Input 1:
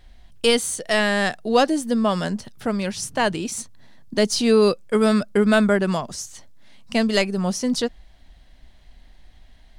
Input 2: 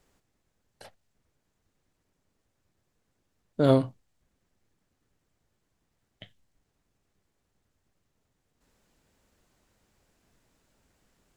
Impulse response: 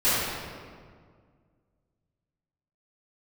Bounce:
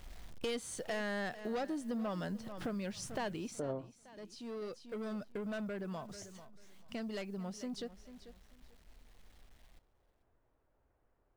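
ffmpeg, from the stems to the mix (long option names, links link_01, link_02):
-filter_complex "[0:a]aemphasis=mode=reproduction:type=50kf,asoftclip=type=tanh:threshold=-17dB,acrusher=bits=8:mix=0:aa=0.000001,volume=-2.5dB,afade=type=out:start_time=3.31:duration=0.37:silence=0.316228,asplit=2[link_01][link_02];[link_02]volume=-18dB[link_03];[1:a]lowpass=1100,equalizer=frequency=190:width=1.3:gain=-12.5,volume=-2.5dB,asplit=2[link_04][link_05];[link_05]apad=whole_len=431710[link_06];[link_01][link_06]sidechaincompress=threshold=-43dB:ratio=12:attack=16:release=924[link_07];[link_03]aecho=0:1:441|882|1323:1|0.21|0.0441[link_08];[link_07][link_04][link_08]amix=inputs=3:normalize=0,acompressor=threshold=-40dB:ratio=3"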